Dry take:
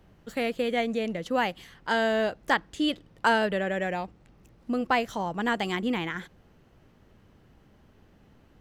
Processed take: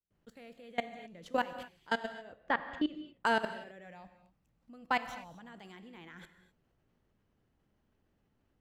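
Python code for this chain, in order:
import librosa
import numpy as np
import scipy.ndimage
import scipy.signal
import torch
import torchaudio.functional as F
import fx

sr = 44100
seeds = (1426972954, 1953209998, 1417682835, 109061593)

y = fx.fade_in_head(x, sr, length_s=0.59)
y = fx.lowpass(y, sr, hz=2500.0, slope=12, at=(2.12, 3.25))
y = fx.peak_eq(y, sr, hz=390.0, db=-12.5, octaves=0.36, at=(3.84, 5.5))
y = fx.level_steps(y, sr, step_db=24)
y = fx.rev_gated(y, sr, seeds[0], gate_ms=280, shape='flat', drr_db=10.5)
y = F.gain(torch.from_numpy(y), -3.5).numpy()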